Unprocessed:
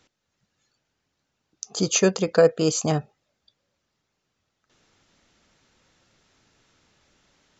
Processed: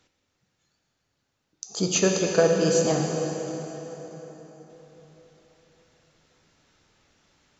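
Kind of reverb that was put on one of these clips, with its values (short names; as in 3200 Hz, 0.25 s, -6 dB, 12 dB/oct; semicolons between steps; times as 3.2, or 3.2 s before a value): plate-style reverb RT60 4.3 s, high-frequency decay 0.75×, DRR 0.5 dB; gain -3 dB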